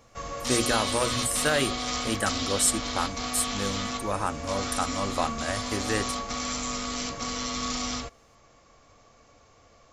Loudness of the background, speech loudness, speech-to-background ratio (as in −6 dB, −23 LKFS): −30.5 LKFS, −29.0 LKFS, 1.5 dB